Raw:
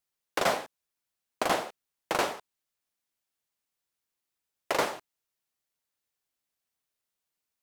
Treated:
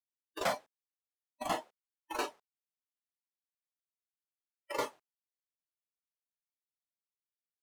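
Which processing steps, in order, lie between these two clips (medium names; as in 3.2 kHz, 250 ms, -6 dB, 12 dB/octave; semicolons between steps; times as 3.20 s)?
waveshaping leveller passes 1; spectral noise reduction 20 dB; trim -8 dB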